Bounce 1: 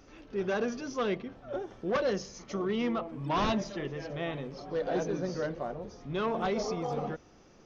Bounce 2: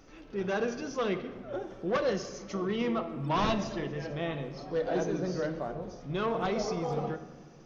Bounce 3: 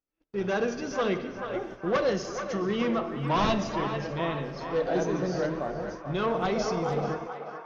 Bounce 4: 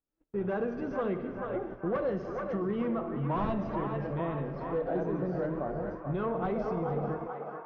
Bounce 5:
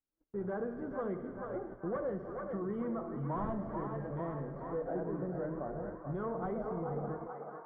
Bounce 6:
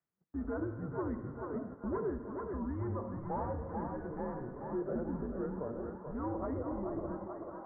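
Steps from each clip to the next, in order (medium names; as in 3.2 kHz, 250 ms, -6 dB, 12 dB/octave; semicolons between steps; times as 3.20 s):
simulated room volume 1300 m³, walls mixed, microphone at 0.64 m
gate -44 dBFS, range -42 dB; band-passed feedback delay 435 ms, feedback 68%, band-pass 1.2 kHz, level -6 dB; trim +3 dB
low-pass 1.5 kHz 12 dB/octave; bass shelf 320 Hz +4 dB; compression 2.5:1, threshold -28 dBFS, peak gain reduction 6.5 dB; trim -1.5 dB
Savitzky-Golay filter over 41 samples; trim -5.5 dB
reverse; upward compressor, threshold -44 dBFS; reverse; mistuned SSB -130 Hz 210–2200 Hz; trim +1 dB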